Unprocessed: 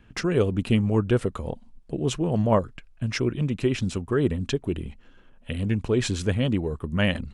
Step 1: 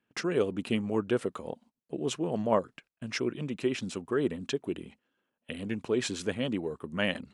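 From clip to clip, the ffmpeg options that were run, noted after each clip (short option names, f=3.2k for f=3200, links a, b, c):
-af "highpass=230,agate=range=-15dB:threshold=-51dB:ratio=16:detection=peak,volume=-4dB"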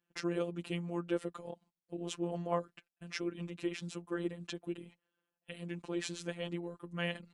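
-af "afftfilt=real='hypot(re,im)*cos(PI*b)':imag='0':win_size=1024:overlap=0.75,volume=-3.5dB"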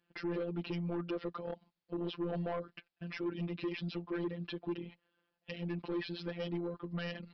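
-af "alimiter=level_in=3.5dB:limit=-24dB:level=0:latency=1:release=135,volume=-3.5dB,aresample=11025,asoftclip=type=tanh:threshold=-37dB,aresample=44100,volume=6.5dB"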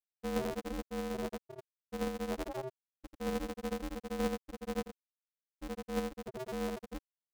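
-af "aecho=1:1:84.55|204.1:0.891|0.282,afftfilt=real='re*gte(hypot(re,im),0.126)':imag='im*gte(hypot(re,im),0.126)':win_size=1024:overlap=0.75,aeval=exprs='val(0)*sgn(sin(2*PI*130*n/s))':c=same,volume=1dB"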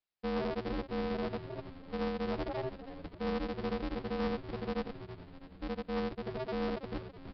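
-filter_complex "[0:a]aresample=11025,asoftclip=type=tanh:threshold=-35dB,aresample=44100,asplit=8[a][b][c][d][e][f][g][h];[b]adelay=326,afreqshift=-100,volume=-11.5dB[i];[c]adelay=652,afreqshift=-200,volume=-15.9dB[j];[d]adelay=978,afreqshift=-300,volume=-20.4dB[k];[e]adelay=1304,afreqshift=-400,volume=-24.8dB[l];[f]adelay=1630,afreqshift=-500,volume=-29.2dB[m];[g]adelay=1956,afreqshift=-600,volume=-33.7dB[n];[h]adelay=2282,afreqshift=-700,volume=-38.1dB[o];[a][i][j][k][l][m][n][o]amix=inputs=8:normalize=0,volume=5dB"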